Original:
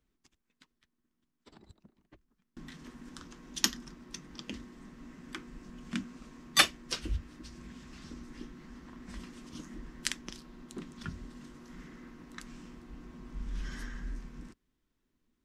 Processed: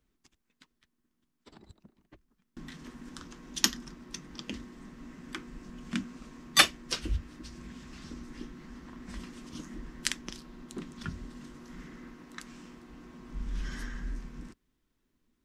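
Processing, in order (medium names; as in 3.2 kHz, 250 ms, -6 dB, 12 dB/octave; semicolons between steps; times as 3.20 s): 12.14–13.29 s: bass shelf 130 Hz -10 dB; trim +2.5 dB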